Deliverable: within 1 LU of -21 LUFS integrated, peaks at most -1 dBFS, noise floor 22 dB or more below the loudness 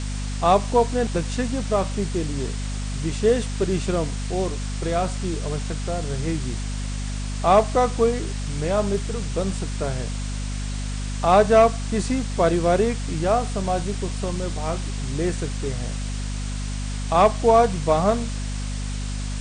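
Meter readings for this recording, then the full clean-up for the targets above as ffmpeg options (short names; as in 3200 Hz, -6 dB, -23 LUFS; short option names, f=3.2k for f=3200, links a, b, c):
hum 50 Hz; harmonics up to 250 Hz; hum level -25 dBFS; noise floor -28 dBFS; noise floor target -46 dBFS; loudness -23.5 LUFS; peak -5.5 dBFS; loudness target -21.0 LUFS
-> -af "bandreject=f=50:t=h:w=4,bandreject=f=100:t=h:w=4,bandreject=f=150:t=h:w=4,bandreject=f=200:t=h:w=4,bandreject=f=250:t=h:w=4"
-af "afftdn=nr=18:nf=-28"
-af "volume=2.5dB"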